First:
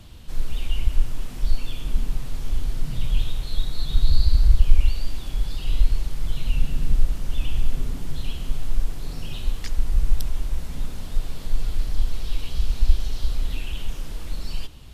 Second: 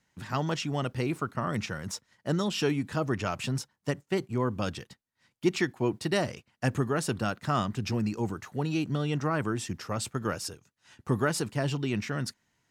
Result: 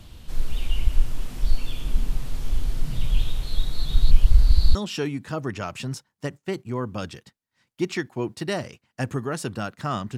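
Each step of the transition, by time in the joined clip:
first
4.11–4.75 s: reverse
4.75 s: go over to second from 2.39 s

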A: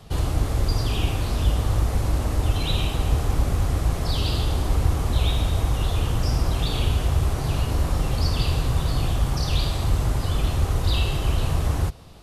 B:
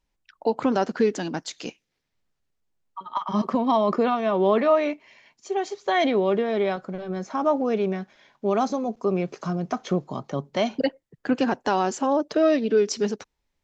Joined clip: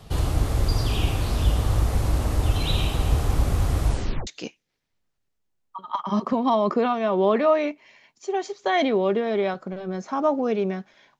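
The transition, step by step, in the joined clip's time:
A
3.85 s: tape stop 0.42 s
4.27 s: go over to B from 1.49 s

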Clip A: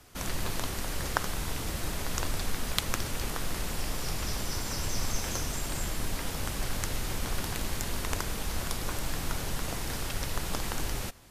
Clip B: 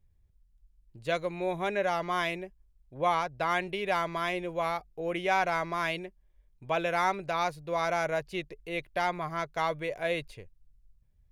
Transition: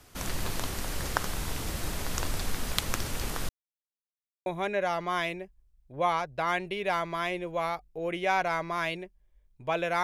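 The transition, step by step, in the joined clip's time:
clip A
3.49–4.46 s: mute
4.46 s: go over to clip B from 1.48 s

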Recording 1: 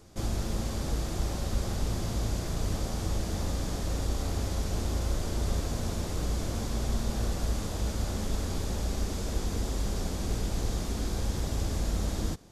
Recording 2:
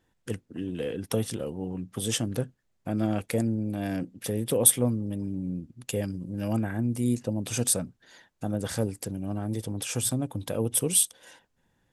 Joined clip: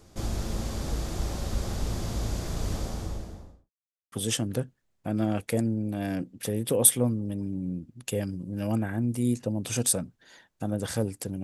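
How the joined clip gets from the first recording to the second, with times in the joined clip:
recording 1
2.72–3.71 s: studio fade out
3.71–4.12 s: mute
4.12 s: go over to recording 2 from 1.93 s

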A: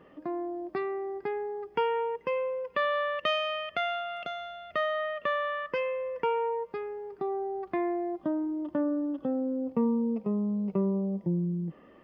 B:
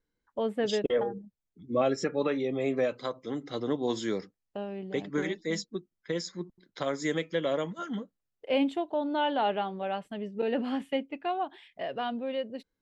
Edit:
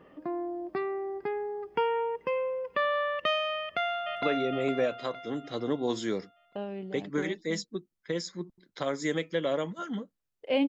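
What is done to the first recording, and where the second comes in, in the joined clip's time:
A
3.60–4.22 s: echo throw 460 ms, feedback 45%, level -2 dB
4.22 s: go over to B from 2.22 s

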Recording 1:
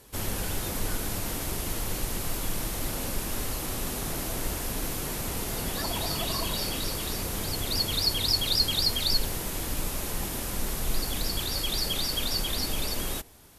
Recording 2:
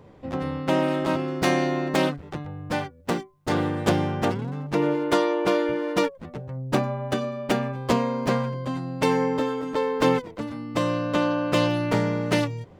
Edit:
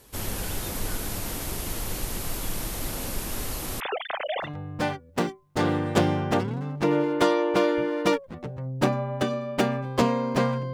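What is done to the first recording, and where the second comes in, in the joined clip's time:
recording 1
3.80–4.51 s: formants replaced by sine waves
4.46 s: go over to recording 2 from 2.37 s, crossfade 0.10 s

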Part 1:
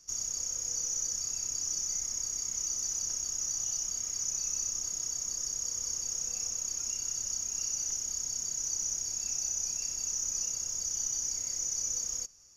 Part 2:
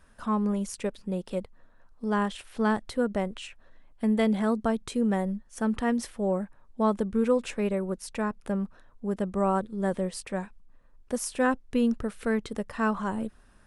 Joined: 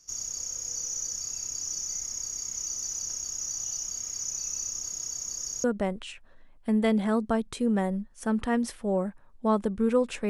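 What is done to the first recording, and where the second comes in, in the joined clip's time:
part 1
5.64 s: go over to part 2 from 2.99 s

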